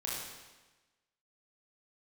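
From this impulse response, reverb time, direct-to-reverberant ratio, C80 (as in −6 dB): 1.2 s, −5.5 dB, 2.0 dB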